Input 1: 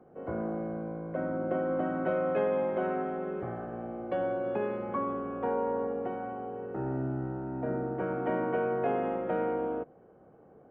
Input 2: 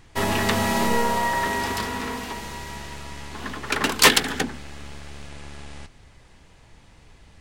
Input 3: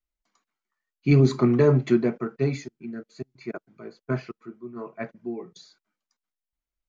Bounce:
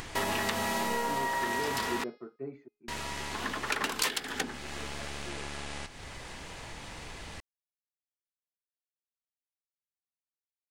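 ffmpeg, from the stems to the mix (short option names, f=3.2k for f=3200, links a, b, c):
-filter_complex "[1:a]lowshelf=f=250:g=-9.5,acompressor=mode=upward:threshold=-30dB:ratio=2.5,volume=-0.5dB,asplit=3[a][b][c];[a]atrim=end=2.04,asetpts=PTS-STARTPTS,afade=t=out:st=2.036:d=0.004:c=hsin[d];[b]atrim=start=2.04:end=2.88,asetpts=PTS-STARTPTS,volume=0[e];[c]atrim=start=2.88,asetpts=PTS-STARTPTS,afade=t=in:d=0.004:c=hsin[f];[d][e][f]concat=n=3:v=0:a=1[g];[2:a]lowpass=1.3k,lowshelf=f=230:t=q:w=1.5:g=-7.5,volume=-15dB[h];[g][h]amix=inputs=2:normalize=0,bandreject=f=417.1:t=h:w=4,bandreject=f=834.2:t=h:w=4,bandreject=f=1.2513k:t=h:w=4,bandreject=f=1.6684k:t=h:w=4,bandreject=f=2.0855k:t=h:w=4,bandreject=f=2.5026k:t=h:w=4,bandreject=f=2.9197k:t=h:w=4,bandreject=f=3.3368k:t=h:w=4,bandreject=f=3.7539k:t=h:w=4,bandreject=f=4.171k:t=h:w=4,bandreject=f=4.5881k:t=h:w=4,bandreject=f=5.0052k:t=h:w=4,bandreject=f=5.4223k:t=h:w=4,acompressor=threshold=-27dB:ratio=12"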